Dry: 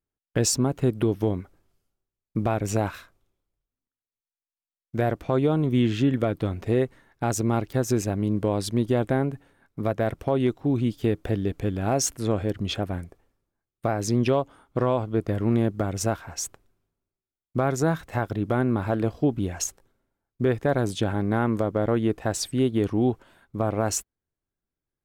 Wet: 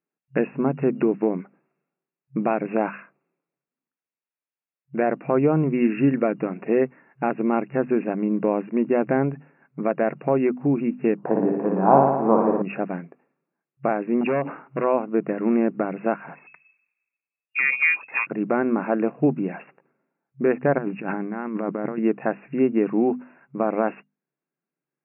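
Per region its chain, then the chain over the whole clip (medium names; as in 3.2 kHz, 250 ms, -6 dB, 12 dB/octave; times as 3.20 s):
11.17–12.62 s: resonant low-pass 970 Hz, resonance Q 4.4 + flutter echo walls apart 10 m, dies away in 1.1 s
14.21–14.84 s: overload inside the chain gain 21.5 dB + decay stretcher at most 110 dB/s
16.35–18.27 s: touch-sensitive flanger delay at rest 7 ms, full sweep at -18.5 dBFS + frequency inversion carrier 2.6 kHz
20.78–21.98 s: peaking EQ 530 Hz -4.5 dB 0.74 oct + compressor with a negative ratio -28 dBFS, ratio -0.5
whole clip: FFT band-pass 130–2800 Hz; hum notches 50/100/150/200/250 Hz; trim +3.5 dB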